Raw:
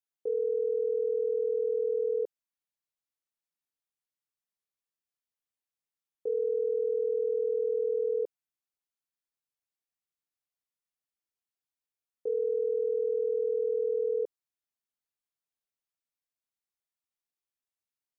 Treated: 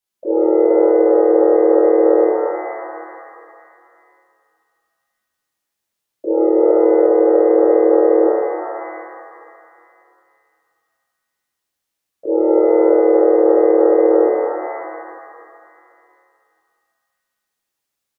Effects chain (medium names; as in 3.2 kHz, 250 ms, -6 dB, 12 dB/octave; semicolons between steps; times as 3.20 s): harmony voices -5 st -1 dB, +3 st -7 dB, +4 st -7 dB; pitch-shifted reverb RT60 2.3 s, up +7 st, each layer -8 dB, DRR -6.5 dB; trim +3.5 dB